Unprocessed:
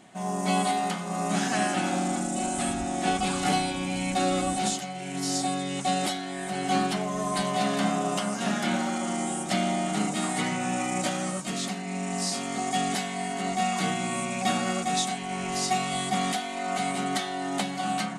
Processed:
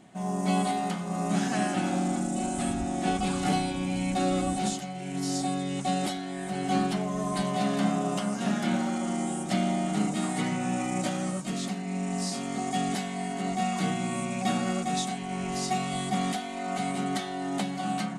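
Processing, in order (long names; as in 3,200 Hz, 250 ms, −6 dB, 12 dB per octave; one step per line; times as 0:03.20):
low-shelf EQ 430 Hz +8 dB
level −5 dB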